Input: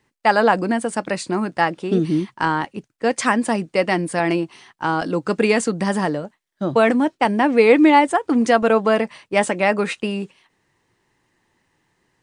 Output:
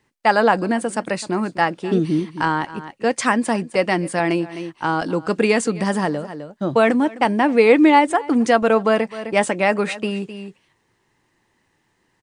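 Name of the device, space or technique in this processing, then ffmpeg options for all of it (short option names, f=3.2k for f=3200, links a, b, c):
ducked delay: -filter_complex "[0:a]asplit=3[a][b][c];[b]adelay=258,volume=-8dB[d];[c]apad=whole_len=550362[e];[d][e]sidechaincompress=threshold=-32dB:ratio=8:attack=10:release=201[f];[a][f]amix=inputs=2:normalize=0"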